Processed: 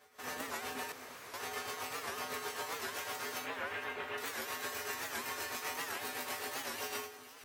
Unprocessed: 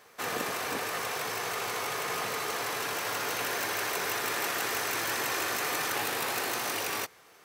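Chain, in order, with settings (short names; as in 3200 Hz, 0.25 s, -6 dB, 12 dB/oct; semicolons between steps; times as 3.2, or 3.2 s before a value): 3.44–4.18 steep low-pass 3400 Hz 36 dB/oct; limiter -22.5 dBFS, peak gain reduction 6 dB; tremolo triangle 7.8 Hz, depth 70%; resonator 84 Hz, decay 0.27 s, harmonics odd, mix 90%; 0.92–1.34 room tone; echo with dull and thin repeats by turns 0.233 s, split 1400 Hz, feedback 80%, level -13.5 dB; record warp 78 rpm, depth 160 cents; gain +6 dB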